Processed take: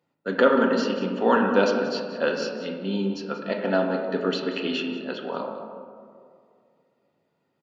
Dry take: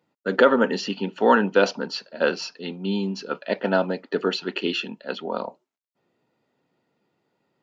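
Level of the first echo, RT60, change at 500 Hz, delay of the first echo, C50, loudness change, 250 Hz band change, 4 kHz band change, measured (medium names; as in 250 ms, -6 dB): -13.0 dB, 2.3 s, -0.5 dB, 184 ms, 4.5 dB, -1.0 dB, +0.5 dB, -3.0 dB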